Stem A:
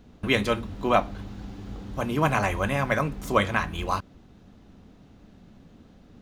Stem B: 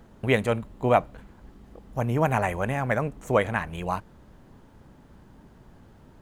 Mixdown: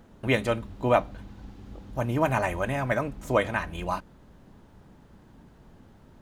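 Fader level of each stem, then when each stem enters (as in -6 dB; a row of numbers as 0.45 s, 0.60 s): -8.5 dB, -2.0 dB; 0.00 s, 0.00 s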